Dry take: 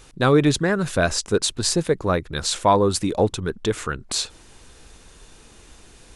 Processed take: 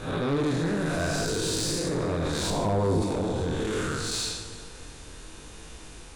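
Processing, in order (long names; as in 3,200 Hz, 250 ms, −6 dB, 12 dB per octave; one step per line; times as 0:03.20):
spectrum smeared in time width 270 ms
on a send: delay that swaps between a low-pass and a high-pass 169 ms, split 880 Hz, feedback 58%, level −14 dB
on the sum: convolution reverb RT60 2.2 s, pre-delay 3 ms, DRR 10 dB
in parallel at −1.5 dB: compressor whose output falls as the input rises −30 dBFS, ratio −1
on the sum: chorus effect 0.7 Hz, delay 18 ms, depth 6.3 ms
soft clipping −21.5 dBFS, distortion −13 dB
0:02.50–0:03.02: tilt shelving filter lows +5.5 dB, about 670 Hz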